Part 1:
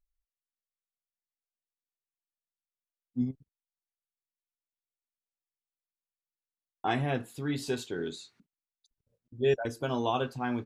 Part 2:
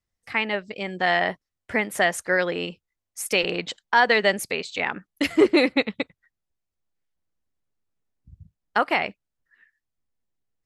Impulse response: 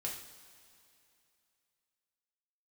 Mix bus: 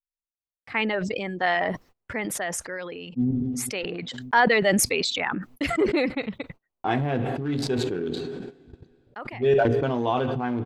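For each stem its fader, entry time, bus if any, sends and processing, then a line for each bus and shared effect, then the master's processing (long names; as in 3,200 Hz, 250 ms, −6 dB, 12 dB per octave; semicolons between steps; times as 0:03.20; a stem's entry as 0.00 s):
+3.0 dB, 0.00 s, send −12 dB, adaptive Wiener filter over 25 samples
−0.5 dB, 0.40 s, no send, reverb reduction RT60 1.2 s; automatic ducking −16 dB, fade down 1.55 s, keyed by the first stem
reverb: on, pre-delay 3 ms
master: low-pass filter 2,700 Hz 6 dB per octave; noise gate −57 dBFS, range −28 dB; level that may fall only so fast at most 21 dB per second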